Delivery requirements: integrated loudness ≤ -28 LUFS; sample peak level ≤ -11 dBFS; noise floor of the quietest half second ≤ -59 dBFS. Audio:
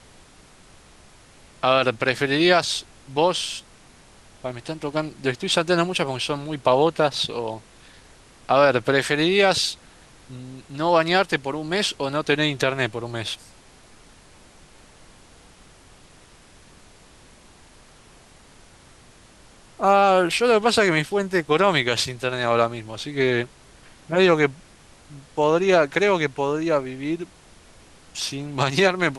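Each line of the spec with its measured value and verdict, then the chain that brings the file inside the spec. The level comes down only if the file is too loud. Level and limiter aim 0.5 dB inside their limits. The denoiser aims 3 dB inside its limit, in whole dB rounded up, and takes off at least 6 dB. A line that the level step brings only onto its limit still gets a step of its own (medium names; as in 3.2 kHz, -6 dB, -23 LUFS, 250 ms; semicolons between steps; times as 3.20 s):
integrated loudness -21.5 LUFS: fail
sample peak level -5.5 dBFS: fail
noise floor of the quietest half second -50 dBFS: fail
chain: noise reduction 6 dB, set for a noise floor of -50 dBFS; trim -7 dB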